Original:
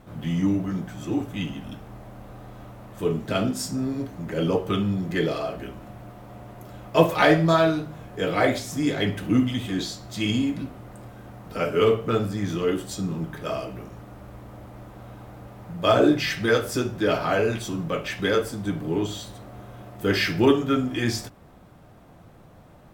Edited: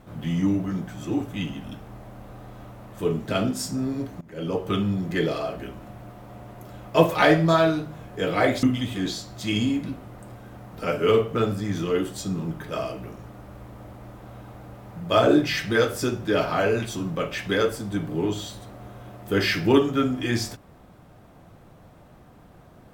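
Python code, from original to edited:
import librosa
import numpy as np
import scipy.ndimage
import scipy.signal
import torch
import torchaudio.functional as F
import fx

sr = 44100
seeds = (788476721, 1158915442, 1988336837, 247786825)

y = fx.edit(x, sr, fx.fade_in_from(start_s=4.21, length_s=0.53, floor_db=-21.0),
    fx.cut(start_s=8.63, length_s=0.73), tone=tone)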